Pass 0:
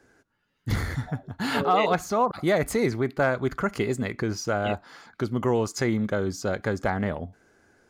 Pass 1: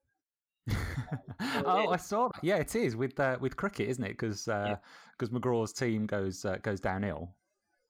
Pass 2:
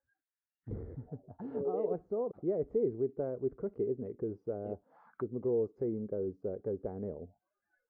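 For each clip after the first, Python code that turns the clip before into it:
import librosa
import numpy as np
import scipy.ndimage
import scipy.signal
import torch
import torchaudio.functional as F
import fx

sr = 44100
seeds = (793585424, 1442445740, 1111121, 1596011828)

y1 = fx.noise_reduce_blind(x, sr, reduce_db=28)
y1 = F.gain(torch.from_numpy(y1), -6.5).numpy()
y2 = fx.envelope_lowpass(y1, sr, base_hz=440.0, top_hz=1700.0, q=4.0, full_db=-34.5, direction='down')
y2 = F.gain(torch.from_numpy(y2), -9.0).numpy()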